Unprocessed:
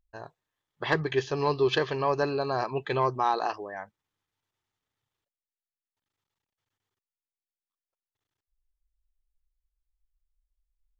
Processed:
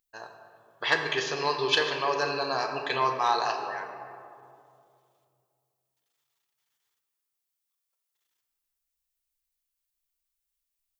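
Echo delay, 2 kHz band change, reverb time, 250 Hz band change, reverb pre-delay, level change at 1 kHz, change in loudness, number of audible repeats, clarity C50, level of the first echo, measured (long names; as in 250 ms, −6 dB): no echo audible, +5.0 dB, 2.5 s, −6.0 dB, 4 ms, +1.5 dB, +0.5 dB, no echo audible, 5.5 dB, no echo audible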